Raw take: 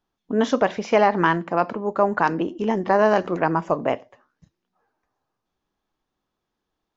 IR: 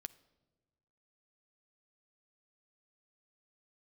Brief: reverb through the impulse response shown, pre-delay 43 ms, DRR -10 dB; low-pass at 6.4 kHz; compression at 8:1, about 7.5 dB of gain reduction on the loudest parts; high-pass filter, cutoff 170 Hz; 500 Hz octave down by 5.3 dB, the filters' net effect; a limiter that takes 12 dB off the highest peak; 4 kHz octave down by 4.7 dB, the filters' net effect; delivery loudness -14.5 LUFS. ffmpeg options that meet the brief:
-filter_complex "[0:a]highpass=170,lowpass=6400,equalizer=f=500:t=o:g=-7,equalizer=f=4000:t=o:g=-6.5,acompressor=threshold=0.0708:ratio=8,alimiter=limit=0.0708:level=0:latency=1,asplit=2[s0][s1];[1:a]atrim=start_sample=2205,adelay=43[s2];[s1][s2]afir=irnorm=-1:irlink=0,volume=5.31[s3];[s0][s3]amix=inputs=2:normalize=0,volume=3.16"

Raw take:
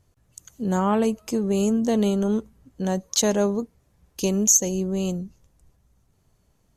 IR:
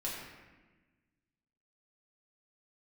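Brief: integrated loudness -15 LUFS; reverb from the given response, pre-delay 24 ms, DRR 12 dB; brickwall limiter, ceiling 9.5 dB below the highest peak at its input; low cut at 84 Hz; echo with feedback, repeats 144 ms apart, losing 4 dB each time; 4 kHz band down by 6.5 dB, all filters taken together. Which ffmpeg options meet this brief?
-filter_complex "[0:a]highpass=84,equalizer=f=4000:t=o:g=-8.5,alimiter=limit=0.15:level=0:latency=1,aecho=1:1:144|288|432|576|720|864|1008|1152|1296:0.631|0.398|0.25|0.158|0.0994|0.0626|0.0394|0.0249|0.0157,asplit=2[s0][s1];[1:a]atrim=start_sample=2205,adelay=24[s2];[s1][s2]afir=irnorm=-1:irlink=0,volume=0.188[s3];[s0][s3]amix=inputs=2:normalize=0,volume=2.99"

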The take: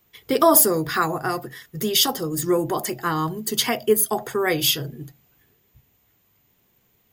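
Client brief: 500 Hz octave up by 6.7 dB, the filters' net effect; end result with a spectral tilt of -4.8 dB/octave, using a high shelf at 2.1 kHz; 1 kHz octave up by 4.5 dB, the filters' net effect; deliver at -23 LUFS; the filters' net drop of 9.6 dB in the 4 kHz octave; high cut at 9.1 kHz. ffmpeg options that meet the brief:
-af "lowpass=9100,equalizer=f=500:t=o:g=8,equalizer=f=1000:t=o:g=5,highshelf=f=2100:g=-7.5,equalizer=f=4000:t=o:g=-5.5,volume=0.596"

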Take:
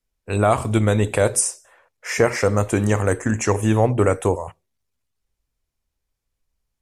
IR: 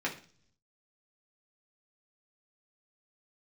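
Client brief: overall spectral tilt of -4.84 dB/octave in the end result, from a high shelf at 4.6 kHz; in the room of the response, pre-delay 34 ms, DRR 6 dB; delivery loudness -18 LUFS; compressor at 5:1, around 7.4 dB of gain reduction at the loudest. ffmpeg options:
-filter_complex "[0:a]highshelf=f=4600:g=-6.5,acompressor=threshold=0.1:ratio=5,asplit=2[s0][s1];[1:a]atrim=start_sample=2205,adelay=34[s2];[s1][s2]afir=irnorm=-1:irlink=0,volume=0.237[s3];[s0][s3]amix=inputs=2:normalize=0,volume=2.24"

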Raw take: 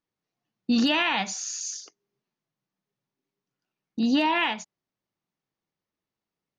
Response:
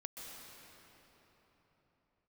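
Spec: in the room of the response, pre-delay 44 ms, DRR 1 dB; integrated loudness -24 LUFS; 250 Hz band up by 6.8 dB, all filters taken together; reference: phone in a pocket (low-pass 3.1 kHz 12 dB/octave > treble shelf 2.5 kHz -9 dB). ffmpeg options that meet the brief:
-filter_complex "[0:a]equalizer=f=250:t=o:g=7.5,asplit=2[s0][s1];[1:a]atrim=start_sample=2205,adelay=44[s2];[s1][s2]afir=irnorm=-1:irlink=0,volume=1.19[s3];[s0][s3]amix=inputs=2:normalize=0,lowpass=3100,highshelf=f=2500:g=-9,volume=0.668"

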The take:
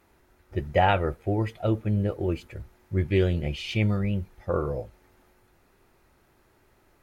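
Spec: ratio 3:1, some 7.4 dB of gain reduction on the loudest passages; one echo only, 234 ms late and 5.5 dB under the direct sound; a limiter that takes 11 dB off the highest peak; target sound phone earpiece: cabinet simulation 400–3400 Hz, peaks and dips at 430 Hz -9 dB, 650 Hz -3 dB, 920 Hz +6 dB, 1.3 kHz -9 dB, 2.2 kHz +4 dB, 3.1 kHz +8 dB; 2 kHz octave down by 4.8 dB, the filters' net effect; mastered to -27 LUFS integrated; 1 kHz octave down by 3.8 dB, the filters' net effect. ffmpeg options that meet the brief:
-af "equalizer=f=1000:t=o:g=-5,equalizer=f=2000:t=o:g=-7,acompressor=threshold=0.0398:ratio=3,alimiter=level_in=1.88:limit=0.0631:level=0:latency=1,volume=0.531,highpass=400,equalizer=f=430:t=q:w=4:g=-9,equalizer=f=650:t=q:w=4:g=-3,equalizer=f=920:t=q:w=4:g=6,equalizer=f=1300:t=q:w=4:g=-9,equalizer=f=2200:t=q:w=4:g=4,equalizer=f=3100:t=q:w=4:g=8,lowpass=f=3400:w=0.5412,lowpass=f=3400:w=1.3066,aecho=1:1:234:0.531,volume=7.08"

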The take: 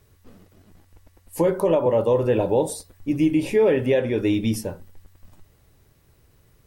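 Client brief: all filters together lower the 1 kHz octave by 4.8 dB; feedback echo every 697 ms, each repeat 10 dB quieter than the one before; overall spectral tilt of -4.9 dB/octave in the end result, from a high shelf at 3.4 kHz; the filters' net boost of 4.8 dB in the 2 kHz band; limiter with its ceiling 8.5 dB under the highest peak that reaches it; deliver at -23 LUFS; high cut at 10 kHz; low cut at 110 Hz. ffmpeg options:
-af "highpass=110,lowpass=10000,equalizer=f=1000:t=o:g=-7.5,equalizer=f=2000:t=o:g=5,highshelf=f=3400:g=7.5,alimiter=limit=0.15:level=0:latency=1,aecho=1:1:697|1394|2091|2788:0.316|0.101|0.0324|0.0104,volume=1.41"

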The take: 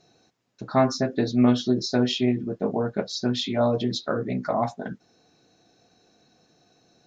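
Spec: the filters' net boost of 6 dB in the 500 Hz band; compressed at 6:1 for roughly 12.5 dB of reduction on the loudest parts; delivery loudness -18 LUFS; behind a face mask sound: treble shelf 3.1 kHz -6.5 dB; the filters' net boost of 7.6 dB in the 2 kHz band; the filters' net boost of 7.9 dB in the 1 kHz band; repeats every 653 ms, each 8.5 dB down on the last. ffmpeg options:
-af "equalizer=f=500:t=o:g=5,equalizer=f=1000:t=o:g=7.5,equalizer=f=2000:t=o:g=9,acompressor=threshold=0.0794:ratio=6,highshelf=f=3100:g=-6.5,aecho=1:1:653|1306|1959|2612:0.376|0.143|0.0543|0.0206,volume=2.99"

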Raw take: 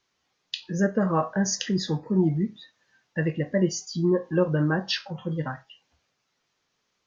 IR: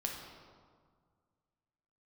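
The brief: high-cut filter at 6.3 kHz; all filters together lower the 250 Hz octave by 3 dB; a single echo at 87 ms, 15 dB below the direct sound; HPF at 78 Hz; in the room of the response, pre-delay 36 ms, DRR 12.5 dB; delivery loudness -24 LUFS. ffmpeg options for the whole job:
-filter_complex "[0:a]highpass=78,lowpass=6300,equalizer=f=250:t=o:g=-5,aecho=1:1:87:0.178,asplit=2[s0][s1];[1:a]atrim=start_sample=2205,adelay=36[s2];[s1][s2]afir=irnorm=-1:irlink=0,volume=0.2[s3];[s0][s3]amix=inputs=2:normalize=0,volume=1.58"

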